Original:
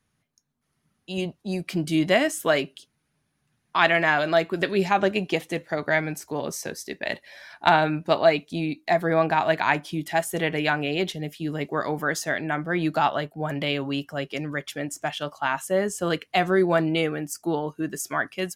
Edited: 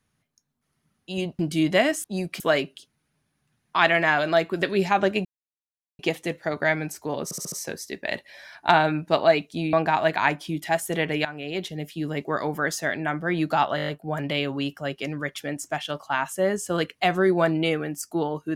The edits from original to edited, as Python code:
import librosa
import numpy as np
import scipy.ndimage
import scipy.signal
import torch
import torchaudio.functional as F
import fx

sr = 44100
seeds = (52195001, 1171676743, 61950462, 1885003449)

y = fx.edit(x, sr, fx.move(start_s=1.39, length_s=0.36, to_s=2.4),
    fx.insert_silence(at_s=5.25, length_s=0.74),
    fx.stutter(start_s=6.5, slice_s=0.07, count=5),
    fx.cut(start_s=8.71, length_s=0.46),
    fx.fade_in_from(start_s=10.69, length_s=0.61, floor_db=-14.0),
    fx.stutter(start_s=13.2, slice_s=0.02, count=7), tone=tone)